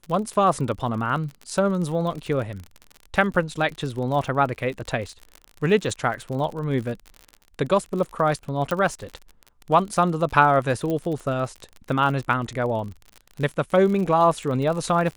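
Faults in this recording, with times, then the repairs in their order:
crackle 47/s -30 dBFS
8.71 pop
10.9 pop -16 dBFS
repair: de-click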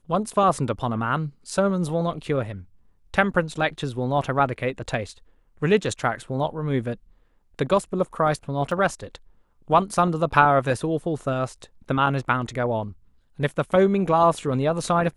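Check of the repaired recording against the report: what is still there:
8.71 pop

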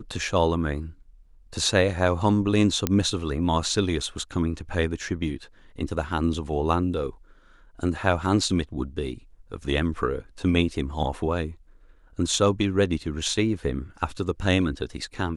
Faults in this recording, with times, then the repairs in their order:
2.87 pop -6 dBFS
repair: de-click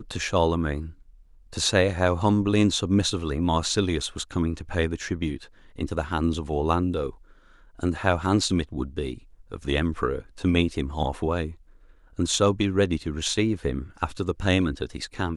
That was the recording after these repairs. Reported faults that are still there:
none

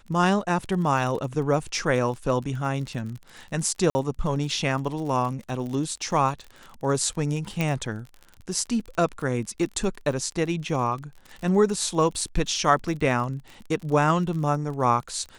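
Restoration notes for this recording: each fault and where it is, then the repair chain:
crackle 39/s -33 dBFS
3.9–3.95 gap 50 ms
7.61 pop -13 dBFS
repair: de-click; interpolate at 3.9, 50 ms

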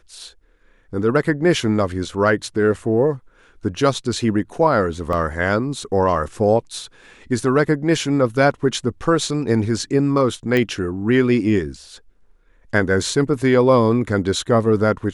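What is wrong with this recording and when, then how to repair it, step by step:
5.13 gap 2 ms
10.57 pop -8 dBFS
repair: de-click; interpolate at 5.13, 2 ms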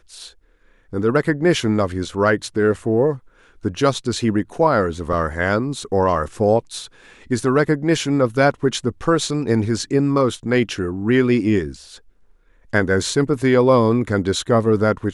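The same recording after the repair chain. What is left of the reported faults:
none

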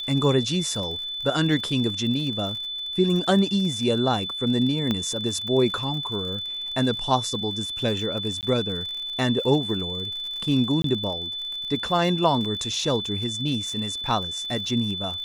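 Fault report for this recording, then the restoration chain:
crackle 52/s -32 dBFS
tone 3500 Hz -29 dBFS
4.91 pop -12 dBFS
8.41–8.43 gap 18 ms
10.82–10.84 gap 23 ms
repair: de-click; notch 3500 Hz, Q 30; interpolate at 8.41, 18 ms; interpolate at 10.82, 23 ms

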